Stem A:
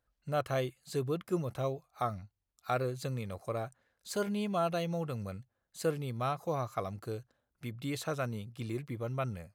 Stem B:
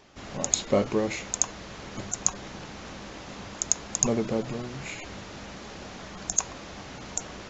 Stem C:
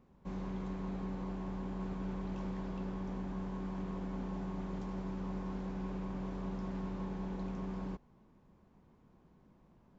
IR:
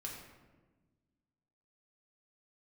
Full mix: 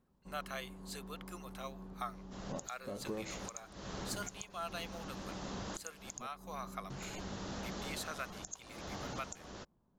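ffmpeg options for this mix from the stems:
-filter_complex "[0:a]highpass=1.2k,volume=-0.5dB,asplit=2[a][b];[1:a]adelay=2150,volume=0.5dB,asplit=3[c][d][e];[c]atrim=end=6.27,asetpts=PTS-STARTPTS,afade=t=out:st=6.266:d=0.004:c=hsin[f];[d]atrim=start=6.27:end=6.9,asetpts=PTS-STARTPTS,volume=0[g];[e]atrim=start=6.9,asetpts=PTS-STARTPTS,afade=t=in:d=0.004:c=hsin[h];[f][g][h]concat=n=3:v=0:a=1[i];[2:a]volume=-10dB[j];[b]apad=whole_len=425508[k];[i][k]sidechaincompress=threshold=-43dB:ratio=8:attack=16:release=1320[l];[l][j]amix=inputs=2:normalize=0,equalizer=f=2.3k:t=o:w=0.61:g=-8,acompressor=threshold=-37dB:ratio=6,volume=0dB[m];[a][m]amix=inputs=2:normalize=0,alimiter=level_in=3dB:limit=-24dB:level=0:latency=1:release=393,volume=-3dB"

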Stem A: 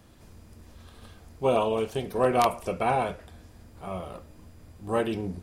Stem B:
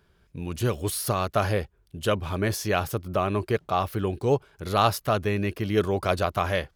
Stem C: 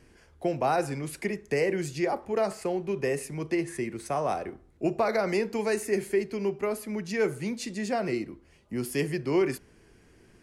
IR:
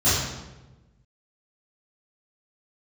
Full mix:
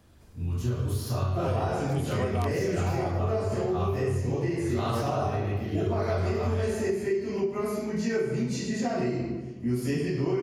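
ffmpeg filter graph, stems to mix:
-filter_complex "[0:a]volume=-4.5dB[a];[1:a]volume=-15dB,asplit=2[b][c];[c]volume=-8.5dB[d];[2:a]adelay=900,volume=-9dB,asplit=2[e][f];[f]volume=-7dB[g];[3:a]atrim=start_sample=2205[h];[d][g]amix=inputs=2:normalize=0[i];[i][h]afir=irnorm=-1:irlink=0[j];[a][b][e][j]amix=inputs=4:normalize=0,acompressor=threshold=-24dB:ratio=6"

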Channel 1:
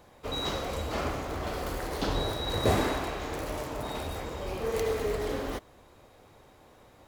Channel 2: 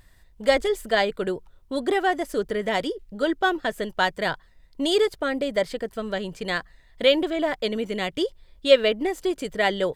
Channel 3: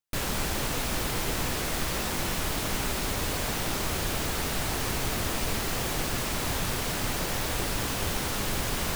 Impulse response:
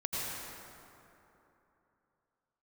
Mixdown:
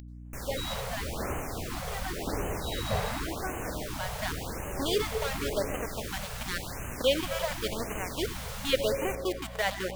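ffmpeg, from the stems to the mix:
-filter_complex "[0:a]afwtdn=0.00891,adelay=250,volume=-4dB[a];[1:a]acompressor=mode=upward:threshold=-24dB:ratio=2.5,aeval=exprs='val(0)*gte(abs(val(0)),0.0708)':c=same,volume=-8.5dB,afade=t=in:st=4.05:d=0.3:silence=0.354813,asplit=2[b][c];[c]volume=-12dB[d];[2:a]adelay=200,volume=-11.5dB,asplit=2[e][f];[f]volume=-11.5dB[g];[3:a]atrim=start_sample=2205[h];[d][g]amix=inputs=2:normalize=0[i];[i][h]afir=irnorm=-1:irlink=0[j];[a][b][e][j]amix=inputs=4:normalize=0,aeval=exprs='val(0)+0.00708*(sin(2*PI*60*n/s)+sin(2*PI*2*60*n/s)/2+sin(2*PI*3*60*n/s)/3+sin(2*PI*4*60*n/s)/4+sin(2*PI*5*60*n/s)/5)':c=same,afftfilt=real='re*(1-between(b*sr/1024,280*pow(4400/280,0.5+0.5*sin(2*PI*0.91*pts/sr))/1.41,280*pow(4400/280,0.5+0.5*sin(2*PI*0.91*pts/sr))*1.41))':imag='im*(1-between(b*sr/1024,280*pow(4400/280,0.5+0.5*sin(2*PI*0.91*pts/sr))/1.41,280*pow(4400/280,0.5+0.5*sin(2*PI*0.91*pts/sr))*1.41))':win_size=1024:overlap=0.75"

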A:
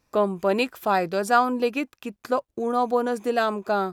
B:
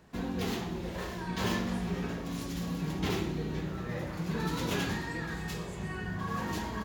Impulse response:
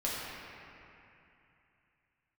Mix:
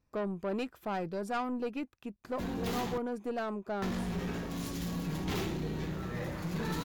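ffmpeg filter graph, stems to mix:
-filter_complex "[0:a]lowpass=f=3.8k:p=1,lowshelf=f=270:g=10.5,volume=-12dB[a];[1:a]adelay=2250,volume=0.5dB,asplit=3[b][c][d];[b]atrim=end=2.98,asetpts=PTS-STARTPTS,afade=t=out:st=2.976:d=0.004:c=hsin[e];[c]atrim=start=2.98:end=3.82,asetpts=PTS-STARTPTS,volume=0[f];[d]atrim=start=3.82,asetpts=PTS-STARTPTS,afade=t=in:d=0.004:c=hsin[g];[e][f][g]concat=n=3:v=0:a=1[h];[a][h]amix=inputs=2:normalize=0,aeval=exprs='(tanh(25.1*val(0)+0.25)-tanh(0.25))/25.1':c=same,highshelf=f=10k:g=5.5"

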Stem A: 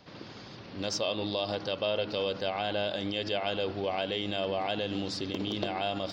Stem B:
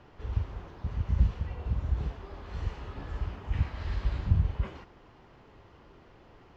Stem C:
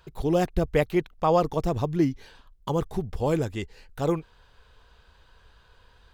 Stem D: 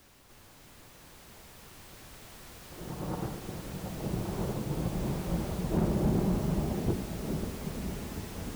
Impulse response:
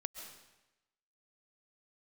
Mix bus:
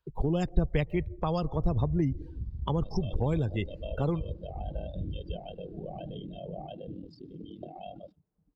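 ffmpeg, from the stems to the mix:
-filter_complex "[0:a]aeval=exprs='val(0)*sin(2*PI*20*n/s)':c=same,adelay=2000,volume=-8.5dB,asplit=2[a][b];[b]volume=-7dB[c];[1:a]lowpass=f=1.2k:w=0.5412,lowpass=f=1.2k:w=1.3066,alimiter=limit=-21.5dB:level=0:latency=1:release=214,adelay=700,volume=-6dB,asplit=2[d][e];[e]volume=-18dB[f];[2:a]volume=2dB,asplit=2[g][h];[h]volume=-14.5dB[i];[3:a]lowpass=1.1k,aecho=1:1:6.6:0.43,volume=-14.5dB[j];[4:a]atrim=start_sample=2205[k];[c][f][i]amix=inputs=3:normalize=0[l];[l][k]afir=irnorm=-1:irlink=0[m];[a][d][g][j][m]amix=inputs=5:normalize=0,afftdn=nr=29:nf=-35,acrossover=split=170|3000[n][o][p];[o]acompressor=threshold=-31dB:ratio=5[q];[n][q][p]amix=inputs=3:normalize=0"

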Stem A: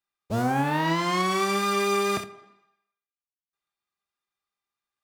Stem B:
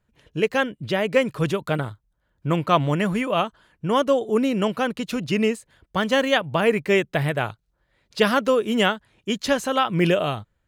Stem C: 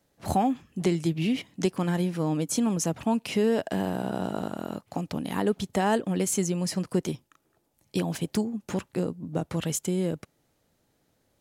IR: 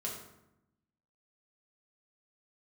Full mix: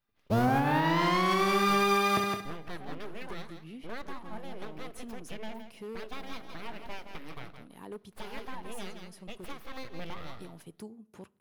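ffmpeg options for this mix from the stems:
-filter_complex "[0:a]volume=2dB,asplit=2[a][b];[b]volume=-6dB[c];[1:a]aeval=exprs='abs(val(0))':c=same,volume=-14dB,asplit=3[d][e][f];[e]volume=-19.5dB[g];[f]volume=-12.5dB[h];[2:a]equalizer=f=400:t=o:w=0.67:g=4,equalizer=f=1k:t=o:w=0.67:g=4,equalizer=f=10k:t=o:w=0.67:g=10,aeval=exprs='0.178*(abs(mod(val(0)/0.178+3,4)-2)-1)':c=same,adelay=2450,volume=-20dB,asplit=2[i][j];[j]volume=-22dB[k];[d][i]amix=inputs=2:normalize=0,alimiter=level_in=5.5dB:limit=-24dB:level=0:latency=1:release=470,volume=-5.5dB,volume=0dB[l];[3:a]atrim=start_sample=2205[m];[g][k]amix=inputs=2:normalize=0[n];[n][m]afir=irnorm=-1:irlink=0[o];[c][h]amix=inputs=2:normalize=0,aecho=0:1:166|332|498:1|0.19|0.0361[p];[a][l][o][p]amix=inputs=4:normalize=0,equalizer=f=7.7k:t=o:w=0.7:g=-9.5,alimiter=limit=-17dB:level=0:latency=1:release=235"

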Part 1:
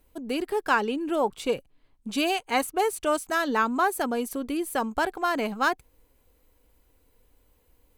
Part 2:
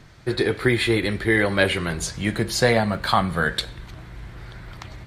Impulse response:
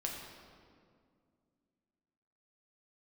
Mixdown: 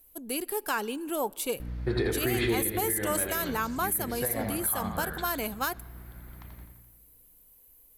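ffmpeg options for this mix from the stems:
-filter_complex "[0:a]equalizer=f=12k:t=o:w=0.49:g=15,crystalizer=i=2:c=0,volume=-6.5dB,asplit=2[a][b];[b]volume=-22.5dB[c];[1:a]aemphasis=mode=reproduction:type=75kf,aeval=exprs='val(0)+0.0224*(sin(2*PI*60*n/s)+sin(2*PI*2*60*n/s)/2+sin(2*PI*3*60*n/s)/3+sin(2*PI*4*60*n/s)/4+sin(2*PI*5*60*n/s)/5)':c=same,adelay=1600,volume=-3.5dB,afade=t=out:st=2.51:d=0.22:silence=0.298538,asplit=3[d][e][f];[e]volume=-15.5dB[g];[f]volume=-5dB[h];[2:a]atrim=start_sample=2205[i];[c][g]amix=inputs=2:normalize=0[j];[j][i]afir=irnorm=-1:irlink=0[k];[h]aecho=0:1:85|170|255|340|425|510|595|680|765:1|0.57|0.325|0.185|0.106|0.0602|0.0343|0.0195|0.0111[l];[a][d][k][l]amix=inputs=4:normalize=0,alimiter=limit=-18dB:level=0:latency=1:release=83"

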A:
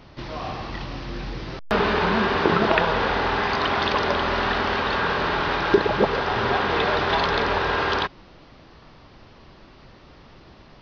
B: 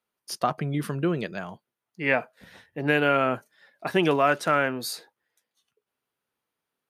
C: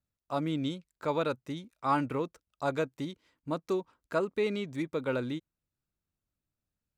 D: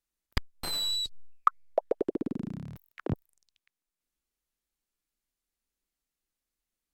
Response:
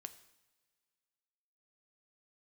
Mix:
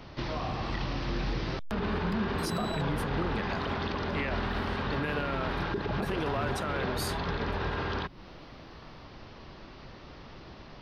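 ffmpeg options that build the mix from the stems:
-filter_complex "[0:a]alimiter=limit=-14dB:level=0:latency=1:release=50,acrossover=split=260[a][b];[b]acompressor=threshold=-33dB:ratio=10[c];[a][c]amix=inputs=2:normalize=0,volume=0.5dB[d];[1:a]acompressor=threshold=-25dB:ratio=6,adelay=2150,volume=-2.5dB[e];[2:a]highpass=830,asplit=2[f][g];[g]adelay=2.7,afreqshift=0.81[h];[f][h]amix=inputs=2:normalize=1,volume=-14dB[i];[3:a]adelay=1750,volume=-12.5dB[j];[d][e][i][j]amix=inputs=4:normalize=0,alimiter=limit=-22dB:level=0:latency=1:release=28"

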